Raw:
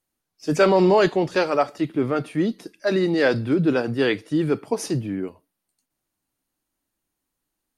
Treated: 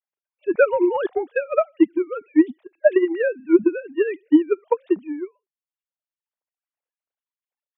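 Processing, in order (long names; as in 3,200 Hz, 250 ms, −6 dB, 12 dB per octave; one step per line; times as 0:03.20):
three sine waves on the formant tracks
transient designer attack +10 dB, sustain −4 dB
level −4.5 dB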